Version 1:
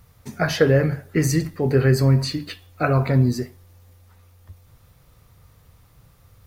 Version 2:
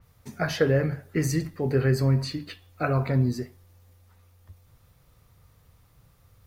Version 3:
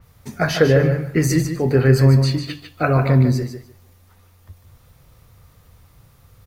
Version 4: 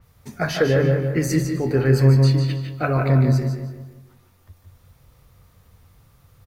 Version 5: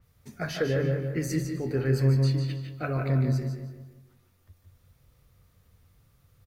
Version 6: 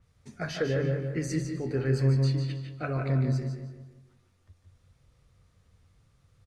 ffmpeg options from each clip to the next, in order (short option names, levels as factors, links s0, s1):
-af "adynamicequalizer=threshold=0.00794:dfrequency=4600:dqfactor=0.7:tfrequency=4600:tqfactor=0.7:attack=5:release=100:ratio=0.375:range=2:mode=cutabove:tftype=highshelf,volume=0.531"
-af "aecho=1:1:149|298|447:0.398|0.0677|0.0115,volume=2.37"
-filter_complex "[0:a]asplit=2[s0][s1];[s1]adelay=171,lowpass=f=3100:p=1,volume=0.473,asplit=2[s2][s3];[s3]adelay=171,lowpass=f=3100:p=1,volume=0.43,asplit=2[s4][s5];[s5]adelay=171,lowpass=f=3100:p=1,volume=0.43,asplit=2[s6][s7];[s7]adelay=171,lowpass=f=3100:p=1,volume=0.43,asplit=2[s8][s9];[s9]adelay=171,lowpass=f=3100:p=1,volume=0.43[s10];[s0][s2][s4][s6][s8][s10]amix=inputs=6:normalize=0,volume=0.631"
-af "equalizer=f=900:t=o:w=0.83:g=-5,volume=0.398"
-af "lowpass=f=9400:w=0.5412,lowpass=f=9400:w=1.3066,volume=0.841"